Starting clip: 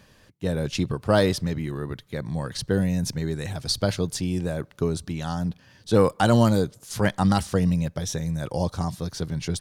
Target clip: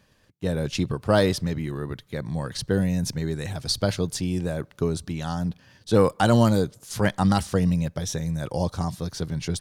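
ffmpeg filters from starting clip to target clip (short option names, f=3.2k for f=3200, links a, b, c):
-af "agate=range=-7dB:threshold=-53dB:ratio=16:detection=peak"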